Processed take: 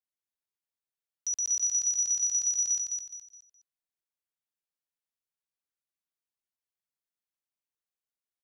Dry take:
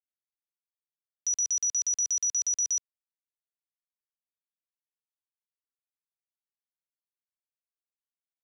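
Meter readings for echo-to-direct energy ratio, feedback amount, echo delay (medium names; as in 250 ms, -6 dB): -3.5 dB, 33%, 209 ms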